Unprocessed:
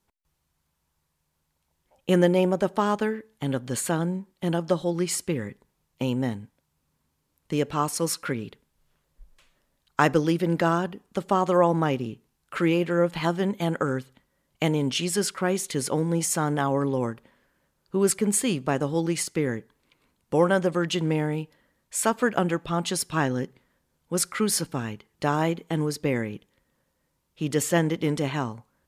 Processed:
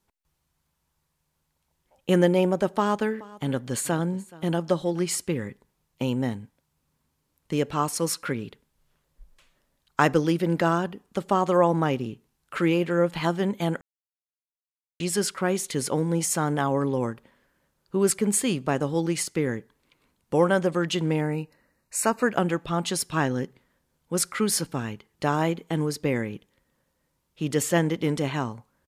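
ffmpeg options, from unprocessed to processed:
ffmpeg -i in.wav -filter_complex "[0:a]asplit=3[link_01][link_02][link_03];[link_01]afade=type=out:start_time=3.1:duration=0.02[link_04];[link_02]aecho=1:1:426:0.0891,afade=type=in:start_time=3.1:duration=0.02,afade=type=out:start_time=5.08:duration=0.02[link_05];[link_03]afade=type=in:start_time=5.08:duration=0.02[link_06];[link_04][link_05][link_06]amix=inputs=3:normalize=0,asettb=1/sr,asplit=3[link_07][link_08][link_09];[link_07]atrim=end=21.214[link_10];[link_08]atrim=start=21.21:end=22.29,asetpts=PTS-STARTPTS,afade=type=in:duration=0.004:curve=qsin,afade=type=out:start_time=1.076:duration=0.004:curve=qsin,asuperstop=centerf=3300:order=8:qfactor=4.1[link_11];[link_09]atrim=start=22.286[link_12];[link_10][link_11]acrossfade=duration=0.004:curve1=hsin:curve2=qsin[link_13];[link_13][link_12]acrossfade=duration=0.004:curve1=qsin:curve2=hsin,asplit=3[link_14][link_15][link_16];[link_14]atrim=end=13.81,asetpts=PTS-STARTPTS,afade=type=out:start_time=13.806:duration=0.004:curve=hsin[link_17];[link_15]atrim=start=13.81:end=15,asetpts=PTS-STARTPTS,volume=0[link_18];[link_16]atrim=start=15,asetpts=PTS-STARTPTS,afade=type=in:duration=0.004:curve=hsin[link_19];[link_17][link_18][link_19]concat=n=3:v=0:a=1" out.wav

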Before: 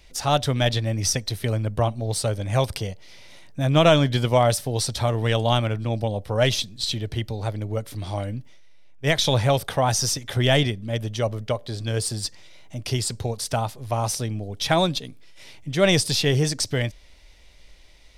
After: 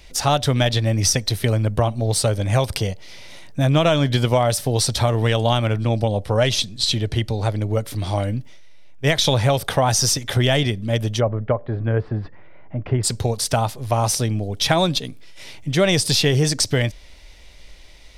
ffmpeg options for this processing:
ffmpeg -i in.wav -filter_complex "[0:a]asettb=1/sr,asplit=3[link_01][link_02][link_03];[link_01]atrim=end=5.804[link_04];[link_02]atrim=start=5.8:end=7.69,asetpts=PTS-STARTPTS,afade=type=in:duration=0.004:curve=qsin,afade=type=out:start_time=1.886:duration=0.004:curve=qsin,lowpass=frequency=12000:width=0.5412,lowpass=frequency=12000:width=1.3066[link_05];[link_03]atrim=start=7.686[link_06];[link_04][link_05]acrossfade=duration=0.004:curve1=hsin:curve2=qsin[link_07];[link_07][link_06]acrossfade=duration=0.004:curve1=qsin:curve2=hsin,asplit=3[link_08][link_09][link_10];[link_08]afade=type=out:start_time=11.19:duration=0.02[link_11];[link_09]lowpass=frequency=1800:width=0.5412,lowpass=frequency=1800:width=1.3066,afade=type=in:start_time=11.19:duration=0.02,afade=type=out:start_time=13.03:duration=0.02[link_12];[link_10]afade=type=in:start_time=13.03:duration=0.02[link_13];[link_11][link_12][link_13]amix=inputs=3:normalize=0,acompressor=threshold=-20dB:ratio=6,volume=6.5dB" out.wav

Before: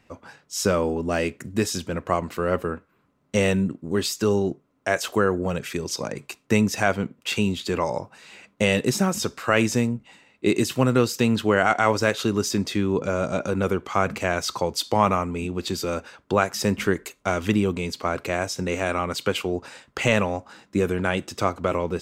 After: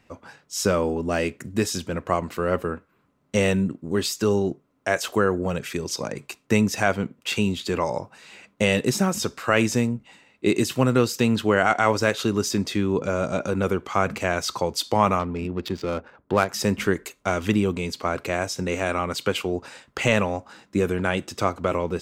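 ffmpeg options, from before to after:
ffmpeg -i in.wav -filter_complex "[0:a]asettb=1/sr,asplit=3[link_01][link_02][link_03];[link_01]atrim=end=15.194[link_04];[link_02]atrim=start=15.19:end=16.49,asetpts=PTS-STARTPTS,afade=type=in:duration=0.004:curve=qsin,afade=type=out:start_time=1.296:duration=0.004:curve=qsin,adynamicsmooth=sensitivity=3.5:basefreq=1100[link_05];[link_03]atrim=start=16.486[link_06];[link_04][link_05]acrossfade=duration=0.004:curve1=hsin:curve2=qsin[link_07];[link_07][link_06]acrossfade=duration=0.004:curve1=qsin:curve2=hsin" out.wav

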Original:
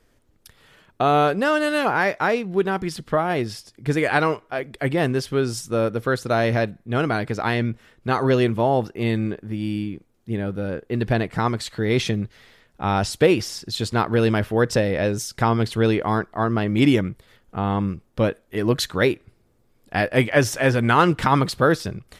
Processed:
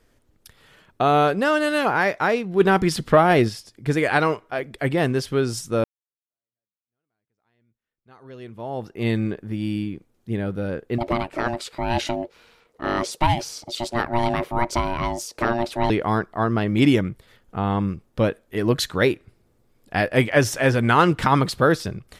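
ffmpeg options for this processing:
ffmpeg -i in.wav -filter_complex "[0:a]asplit=3[link_01][link_02][link_03];[link_01]afade=type=out:start_time=2.59:duration=0.02[link_04];[link_02]acontrast=78,afade=type=in:start_time=2.59:duration=0.02,afade=type=out:start_time=3.48:duration=0.02[link_05];[link_03]afade=type=in:start_time=3.48:duration=0.02[link_06];[link_04][link_05][link_06]amix=inputs=3:normalize=0,asettb=1/sr,asplit=3[link_07][link_08][link_09];[link_07]atrim=end=10.984[link_10];[link_08]atrim=start=10.98:end=15.9,asetpts=PTS-STARTPTS,afade=type=in:duration=0.004:curve=qsin,afade=type=out:start_time=4.916:duration=0.004:curve=qsin,aeval=exprs='val(0)*sin(2*PI*470*n/s)':channel_layout=same[link_11];[link_09]atrim=start=15.896[link_12];[link_10][link_11]acrossfade=duration=0.004:curve1=hsin:curve2=qsin[link_13];[link_13][link_12]acrossfade=duration=0.004:curve1=qsin:curve2=hsin,asplit=2[link_14][link_15];[link_14]atrim=end=5.84,asetpts=PTS-STARTPTS,afade=type=out:start_time=5.836:duration=0.004:curve=hsin[link_16];[link_15]atrim=start=5.84,asetpts=PTS-STARTPTS,afade=type=in:duration=3.23:curve=exp[link_17];[link_16][link_17]concat=n=2:v=0:a=1" out.wav

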